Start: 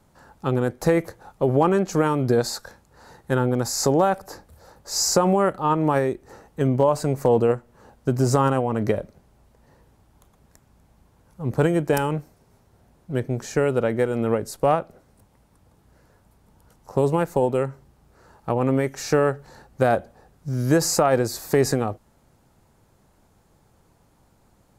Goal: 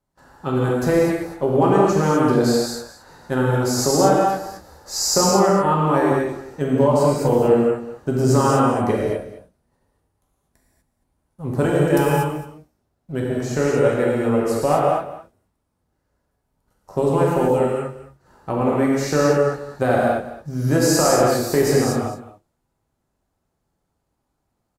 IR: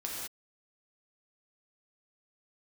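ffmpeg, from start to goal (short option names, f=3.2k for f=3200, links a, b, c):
-filter_complex "[0:a]agate=range=-18dB:threshold=-52dB:ratio=16:detection=peak,asettb=1/sr,asplit=3[a][b][c];[a]atrim=end=8.484[d];[b]atrim=start=8.48:end=11.64,asetpts=PTS-STARTPTS,afade=t=in:d=0.004:c=qsin,afade=t=out:st=3.156:d=0.004:c=qsin,equalizer=f=9.6k:w=4.4:g=9[e];[c]atrim=start=11.636[f];[d][e]acrossfade=d=0.004:c1=hsin:c2=qsin[g];[g][f]acrossfade=d=0.004:c1=qsin:c2=hsin,aecho=1:1:217:0.168[h];[1:a]atrim=start_sample=2205,asetrate=37044,aresample=44100[i];[h][i]afir=irnorm=-1:irlink=0"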